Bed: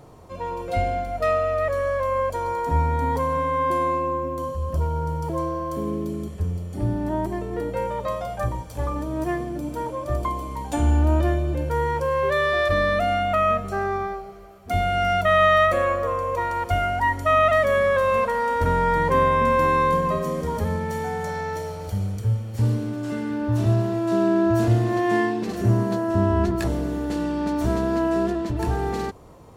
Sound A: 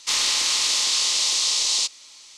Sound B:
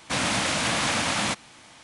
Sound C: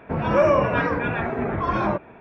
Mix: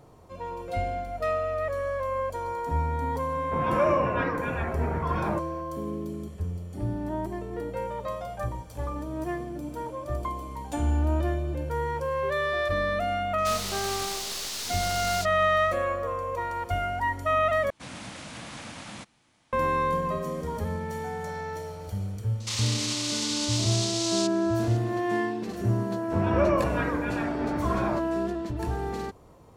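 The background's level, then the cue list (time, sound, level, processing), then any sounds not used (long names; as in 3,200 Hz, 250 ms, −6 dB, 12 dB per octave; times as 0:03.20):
bed −6 dB
0:03.42: mix in C −6.5 dB
0:13.38: mix in A −10.5 dB + wavefolder on the positive side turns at −22 dBFS
0:17.70: overwrite with B −17.5 dB + low-shelf EQ 350 Hz +7.5 dB
0:22.40: mix in A −4 dB + brickwall limiter −17.5 dBFS
0:26.02: mix in C −7 dB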